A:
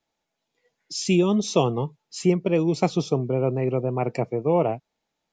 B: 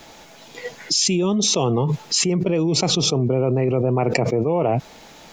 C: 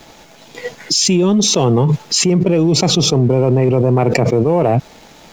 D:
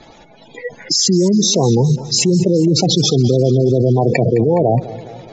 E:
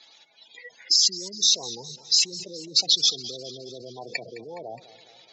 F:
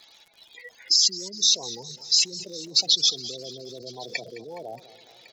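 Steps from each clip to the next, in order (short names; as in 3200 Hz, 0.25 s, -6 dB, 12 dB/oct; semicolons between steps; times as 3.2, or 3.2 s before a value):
fast leveller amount 100%; gain -4 dB
low shelf 450 Hz +3.5 dB; sample leveller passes 1; gain +1 dB
spectral gate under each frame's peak -15 dB strong; warbling echo 0.208 s, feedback 58%, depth 123 cents, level -16.5 dB
band-pass 4200 Hz, Q 1.9
crackle 89/s -43 dBFS; echo 1.105 s -23 dB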